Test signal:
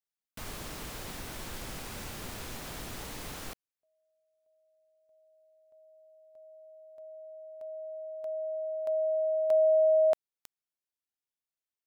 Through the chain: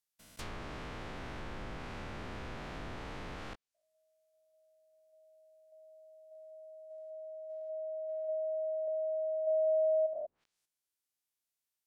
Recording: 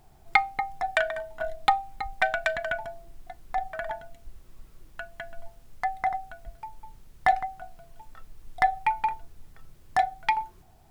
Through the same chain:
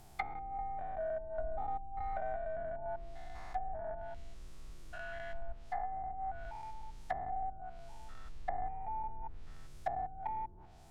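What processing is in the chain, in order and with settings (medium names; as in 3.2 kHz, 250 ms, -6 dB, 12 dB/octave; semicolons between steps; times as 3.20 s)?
spectrogram pixelated in time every 200 ms; treble shelf 3.8 kHz +8 dB; low-pass that closes with the level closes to 450 Hz, closed at -31 dBFS; trim +1 dB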